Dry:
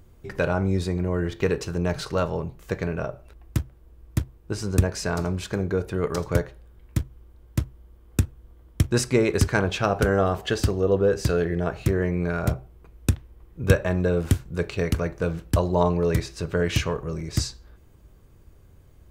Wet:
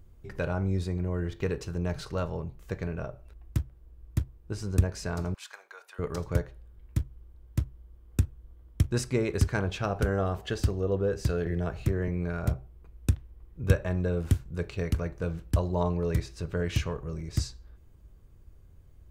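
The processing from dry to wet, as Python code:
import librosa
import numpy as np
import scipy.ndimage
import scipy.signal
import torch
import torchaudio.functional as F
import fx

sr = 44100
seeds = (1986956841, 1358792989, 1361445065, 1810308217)

y = fx.highpass(x, sr, hz=880.0, slope=24, at=(5.34, 5.99))
y = fx.band_squash(y, sr, depth_pct=40, at=(11.46, 12.08))
y = fx.low_shelf(y, sr, hz=110.0, db=9.5)
y = y * librosa.db_to_amplitude(-8.5)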